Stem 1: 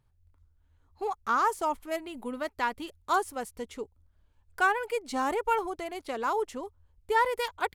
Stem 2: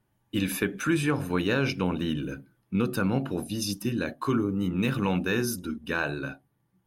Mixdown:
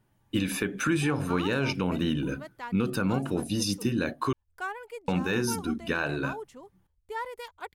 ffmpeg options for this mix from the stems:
-filter_complex "[0:a]volume=-10dB[a];[1:a]equalizer=f=12k:w=6.9:g=-13,volume=3dB,asplit=3[b][c][d];[b]atrim=end=4.33,asetpts=PTS-STARTPTS,afade=t=out:st=4.326:d=0.004:c=hsin[e];[c]atrim=start=4.33:end=5.08,asetpts=PTS-STARTPTS,volume=0[f];[d]atrim=start=5.08,asetpts=PTS-STARTPTS,afade=t=in:d=0.004:c=hsin[g];[e][f][g]concat=n=3:v=0:a=1[h];[a][h]amix=inputs=2:normalize=0,alimiter=limit=-16dB:level=0:latency=1:release=182"

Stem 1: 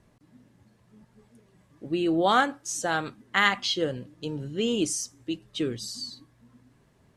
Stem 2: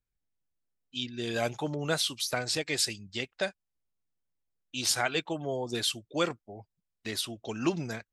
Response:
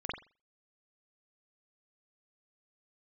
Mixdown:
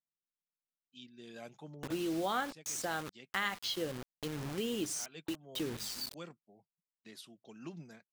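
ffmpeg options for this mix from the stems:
-filter_complex "[0:a]acrusher=bits=5:mix=0:aa=0.000001,volume=-1.5dB[a];[1:a]lowshelf=f=110:t=q:w=3:g=-13.5,volume=-19dB[b];[a][b]amix=inputs=2:normalize=0,acompressor=threshold=-40dB:ratio=2"

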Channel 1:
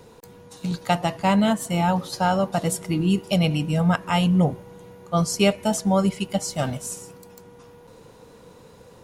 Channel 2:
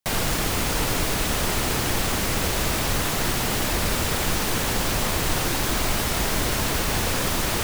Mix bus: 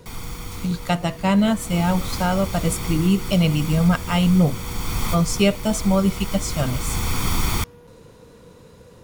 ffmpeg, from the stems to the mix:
-filter_complex "[0:a]equalizer=f=810:t=o:w=0.36:g=-6.5,volume=0.5dB,asplit=2[a][b];[1:a]aecho=1:1:0.9:0.71,volume=-2.5dB,afade=t=in:st=1.32:d=0.64:silence=0.251189[c];[b]apad=whole_len=336893[d];[c][d]sidechaincompress=threshold=-26dB:ratio=8:attack=16:release=957[e];[a][e]amix=inputs=2:normalize=0,lowshelf=f=130:g=6.5"

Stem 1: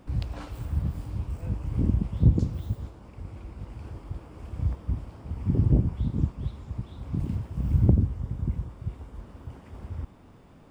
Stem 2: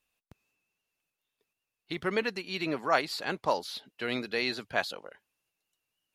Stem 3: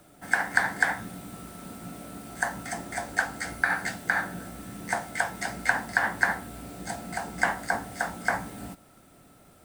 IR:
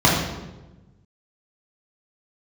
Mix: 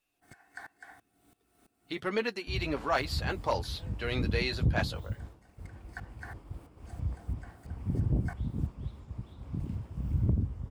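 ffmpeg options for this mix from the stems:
-filter_complex "[0:a]agate=range=-33dB:threshold=-39dB:ratio=3:detection=peak,adelay=2400,volume=-6.5dB[a];[1:a]flanger=delay=7:depth=3.7:regen=-31:speed=0.35:shape=triangular,volume=2.5dB,asplit=2[b][c];[2:a]aecho=1:1:2.7:0.65,aeval=exprs='val(0)*pow(10,-21*if(lt(mod(-3*n/s,1),2*abs(-3)/1000),1-mod(-3*n/s,1)/(2*abs(-3)/1000),(mod(-3*n/s,1)-2*abs(-3)/1000)/(1-2*abs(-3)/1000))/20)':c=same,volume=-19dB[d];[c]apad=whole_len=425680[e];[d][e]sidechaincompress=threshold=-35dB:ratio=8:attack=5.2:release=1120[f];[a][b][f]amix=inputs=3:normalize=0,asoftclip=type=tanh:threshold=-17dB"

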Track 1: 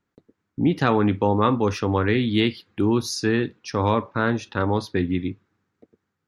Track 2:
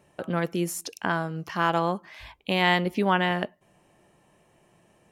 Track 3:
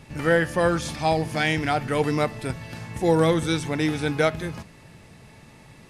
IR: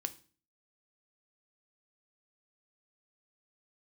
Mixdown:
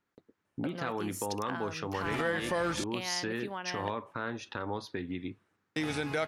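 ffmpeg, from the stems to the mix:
-filter_complex "[0:a]acompressor=threshold=-26dB:ratio=6,volume=-1dB[a];[1:a]agate=range=-15dB:threshold=-54dB:ratio=16:detection=peak,acompressor=threshold=-30dB:ratio=6,adelay=450,volume=-3.5dB[b];[2:a]adelay=1950,volume=0.5dB,asplit=3[c][d][e];[c]atrim=end=2.84,asetpts=PTS-STARTPTS,afade=t=out:st=2.836:d=0.004:c=hsin[f];[d]atrim=start=2.84:end=5.76,asetpts=PTS-STARTPTS,volume=0[g];[e]atrim=start=5.76,asetpts=PTS-STARTPTS,afade=t=in:d=0.004:c=hsin[h];[f][g][h]concat=n=3:v=0:a=1[i];[a][i]amix=inputs=2:normalize=0,highshelf=f=6.6k:g=-5,alimiter=limit=-19.5dB:level=0:latency=1:release=104,volume=0dB[j];[b][j]amix=inputs=2:normalize=0,lowshelf=f=320:g=-9"

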